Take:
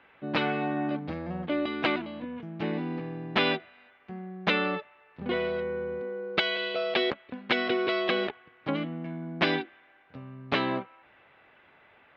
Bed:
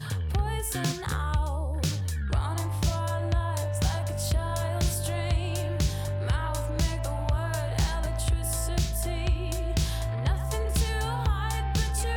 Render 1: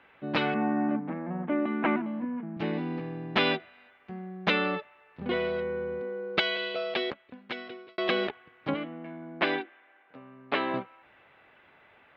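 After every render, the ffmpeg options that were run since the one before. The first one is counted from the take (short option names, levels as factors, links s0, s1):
-filter_complex "[0:a]asettb=1/sr,asplit=3[s0][s1][s2];[s0]atrim=end=0.544[s3];[s1]atrim=start=0.54:end=2.57,asetpts=PTS-STARTPTS,afade=t=in:d=0.004:c=qsin,afade=t=out:st=2.026:d=0.004:c=qsin,highpass=f=170:w=0.5412,highpass=f=170:w=1.3066,equalizer=f=220:t=q:w=4:g=10,equalizer=f=500:t=q:w=4:g=-4,equalizer=f=930:t=q:w=4:g=4,lowpass=f=2100:w=0.5412,lowpass=f=2100:w=1.3066[s4];[s2]atrim=start=2.566[s5];[s3][s4]acrossfade=d=0.004:c1=hsin:c2=qsin[s6];[s6][s5]acrossfade=d=0.004:c1=qsin:c2=hsin,asettb=1/sr,asplit=3[s7][s8][s9];[s7]atrim=end=8.744[s10];[s8]atrim=start=8.74:end=10.74,asetpts=PTS-STARTPTS,afade=t=in:d=0.004:c=qsin,afade=t=out:st=1.996:d=0.004:c=qsin,highpass=300,lowpass=3000[s11];[s9]atrim=start=10.736[s12];[s10][s11]acrossfade=d=0.004:c1=hsin:c2=qsin[s13];[s13][s12]acrossfade=d=0.004:c1=qsin:c2=hsin,asplit=2[s14][s15];[s14]atrim=end=7.98,asetpts=PTS-STARTPTS,afade=t=out:st=6.43:d=1.55[s16];[s15]atrim=start=7.98,asetpts=PTS-STARTPTS,afade=t=in:d=0.004:c=hsin[s17];[s16][s17]concat=n=2:v=0:a=1"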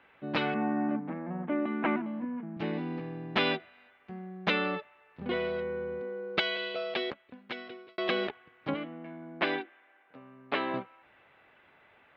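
-af "volume=0.75"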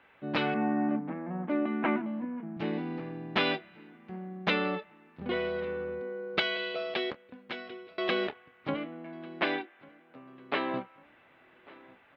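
-filter_complex "[0:a]asplit=2[s0][s1];[s1]adelay=27,volume=0.2[s2];[s0][s2]amix=inputs=2:normalize=0,asplit=2[s3][s4];[s4]adelay=1146,lowpass=f=3100:p=1,volume=0.075,asplit=2[s5][s6];[s6]adelay=1146,lowpass=f=3100:p=1,volume=0.46,asplit=2[s7][s8];[s8]adelay=1146,lowpass=f=3100:p=1,volume=0.46[s9];[s3][s5][s7][s9]amix=inputs=4:normalize=0"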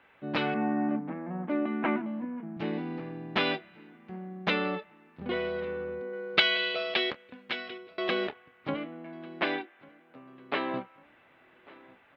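-filter_complex "[0:a]asettb=1/sr,asplit=3[s0][s1][s2];[s0]atrim=end=6.134[s3];[s1]atrim=start=6.13:end=7.78,asetpts=PTS-STARTPTS,afade=t=in:d=0.004:c=qsin,afade=t=out:st=1.646:d=0.004:c=qsin,equalizer=f=3200:w=0.49:g=7.5[s4];[s2]atrim=start=7.776[s5];[s3][s4]acrossfade=d=0.004:c1=hsin:c2=qsin[s6];[s6][s5]acrossfade=d=0.004:c1=qsin:c2=hsin"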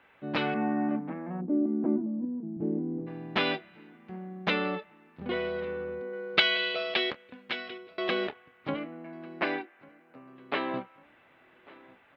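-filter_complex "[0:a]asplit=3[s0][s1][s2];[s0]afade=t=out:st=1.4:d=0.02[s3];[s1]lowpass=f=360:t=q:w=1.5,afade=t=in:st=1.4:d=0.02,afade=t=out:st=3.06:d=0.02[s4];[s2]afade=t=in:st=3.06:d=0.02[s5];[s3][s4][s5]amix=inputs=3:normalize=0,asettb=1/sr,asplit=3[s6][s7][s8];[s6]atrim=end=8.794[s9];[s7]atrim=start=8.79:end=10.36,asetpts=PTS-STARTPTS,afade=t=in:d=0.004:c=qsin,afade=t=out:st=1.566:d=0.004:c=qsin,equalizer=f=3400:t=o:w=0.32:g=-9[s10];[s8]atrim=start=10.356[s11];[s9][s10]acrossfade=d=0.004:c1=hsin:c2=qsin[s12];[s12][s11]acrossfade=d=0.004:c1=qsin:c2=hsin"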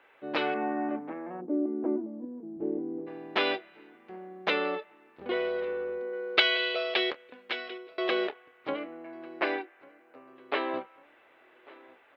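-af "lowshelf=f=260:t=q:w=1.5:g=-11.5"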